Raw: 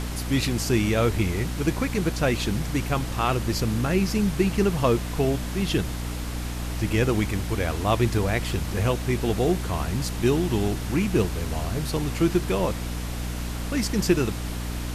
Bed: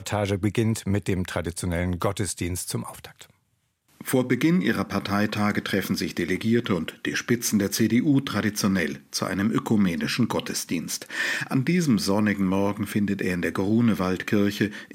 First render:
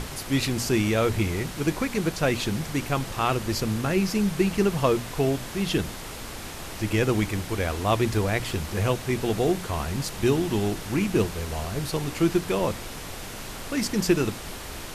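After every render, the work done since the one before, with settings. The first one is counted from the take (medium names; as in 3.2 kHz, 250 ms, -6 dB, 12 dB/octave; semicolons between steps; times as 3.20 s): hum notches 60/120/180/240/300 Hz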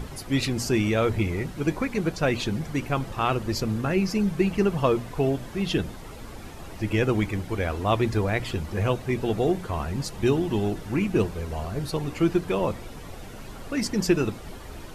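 noise reduction 11 dB, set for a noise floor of -37 dBFS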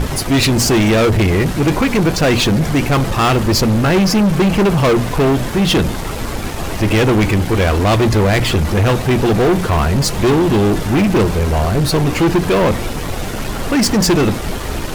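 waveshaping leveller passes 5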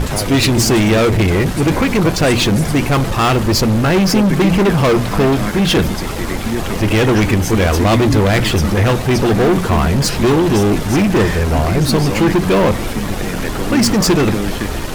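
add bed +0.5 dB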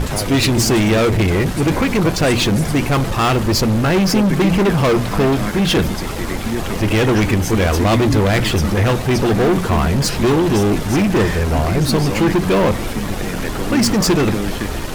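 trim -2 dB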